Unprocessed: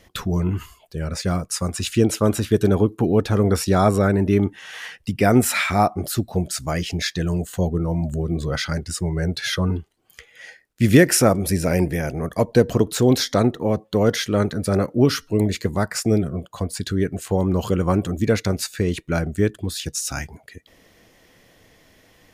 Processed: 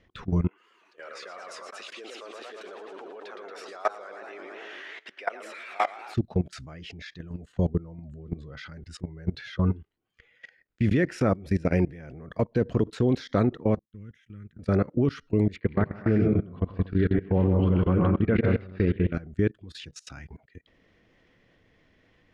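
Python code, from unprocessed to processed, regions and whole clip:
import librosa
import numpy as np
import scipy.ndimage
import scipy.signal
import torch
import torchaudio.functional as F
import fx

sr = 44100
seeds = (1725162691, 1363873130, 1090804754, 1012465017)

y = fx.chain(x, sr, fx.highpass(hz=540.0, slope=24),
    fx.high_shelf(hz=5000.0, db=2.5),
    fx.echo_warbled(ms=111, feedback_pct=68, rate_hz=2.8, cents=211, wet_db=-6.0), at=(0.48, 6.14))
y = fx.chain(y, sr, fx.tone_stack(knobs='6-0-2'),
    fx.fixed_phaser(hz=1900.0, stages=4), at=(13.79, 14.59))
y = fx.chain(y, sr, fx.lowpass(hz=3000.0, slope=24),
    fx.echo_multitap(ms=(97, 126, 160, 192, 246), db=(-11.5, -7.5, -4.0, -11.5, -7.0)), at=(15.56, 19.13))
y = scipy.signal.sosfilt(scipy.signal.butter(2, 2700.0, 'lowpass', fs=sr, output='sos'), y)
y = fx.peak_eq(y, sr, hz=760.0, db=-5.5, octaves=1.2)
y = fx.level_steps(y, sr, step_db=21)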